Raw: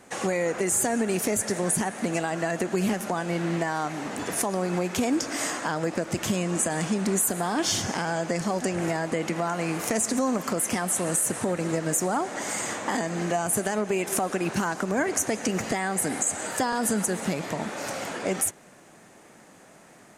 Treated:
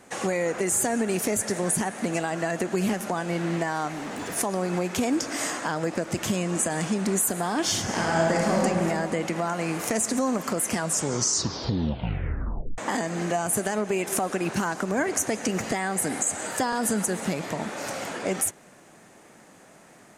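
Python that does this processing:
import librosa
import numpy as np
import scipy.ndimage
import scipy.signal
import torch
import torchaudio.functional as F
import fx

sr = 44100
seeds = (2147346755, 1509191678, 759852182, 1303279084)

y = fx.clip_hard(x, sr, threshold_db=-29.0, at=(3.9, 4.35), fade=0.02)
y = fx.reverb_throw(y, sr, start_s=7.84, length_s=0.78, rt60_s=2.3, drr_db=-3.0)
y = fx.edit(y, sr, fx.tape_stop(start_s=10.66, length_s=2.12), tone=tone)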